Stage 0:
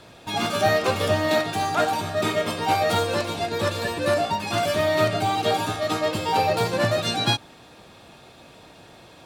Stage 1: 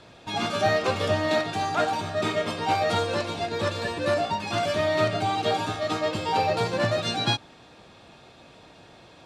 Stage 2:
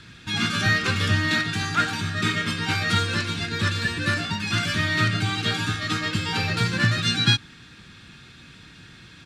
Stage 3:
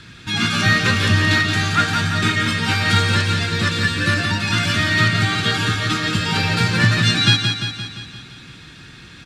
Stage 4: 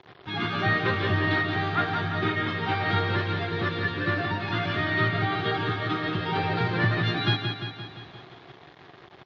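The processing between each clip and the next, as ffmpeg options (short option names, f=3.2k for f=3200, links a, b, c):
-af "lowpass=7.2k,volume=-2.5dB"
-af "firequalizer=gain_entry='entry(170,0);entry(620,-24);entry(1500,1);entry(2400,-2)':delay=0.05:min_phase=1,volume=8dB"
-af "aecho=1:1:173|346|519|692|865|1038|1211|1384:0.501|0.291|0.169|0.0978|0.0567|0.0329|0.0191|0.0111,volume=4.5dB"
-af "acrusher=bits=5:mix=0:aa=0.000001,highpass=100,equalizer=f=220:t=q:w=4:g=-8,equalizer=f=380:t=q:w=4:g=10,equalizer=f=730:t=q:w=4:g=9,equalizer=f=1.1k:t=q:w=4:g=3,equalizer=f=1.5k:t=q:w=4:g=-4,equalizer=f=2.6k:t=q:w=4:g=-8,lowpass=f=3.2k:w=0.5412,lowpass=f=3.2k:w=1.3066,volume=-6dB" -ar 16000 -c:a libmp3lame -b:a 40k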